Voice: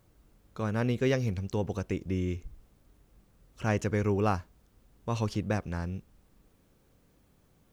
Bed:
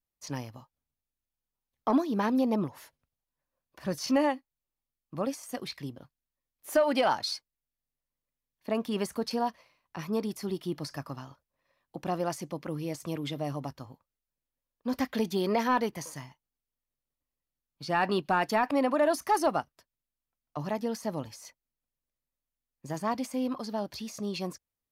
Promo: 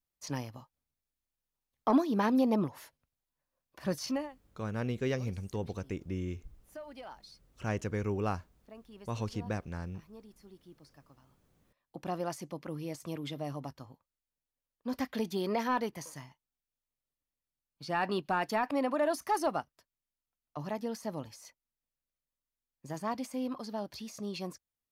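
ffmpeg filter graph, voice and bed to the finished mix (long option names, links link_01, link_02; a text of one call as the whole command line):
ffmpeg -i stem1.wav -i stem2.wav -filter_complex "[0:a]adelay=4000,volume=-5.5dB[link_01];[1:a]volume=16.5dB,afade=type=out:start_time=3.91:duration=0.38:silence=0.0891251,afade=type=in:start_time=11.26:duration=0.72:silence=0.141254[link_02];[link_01][link_02]amix=inputs=2:normalize=0" out.wav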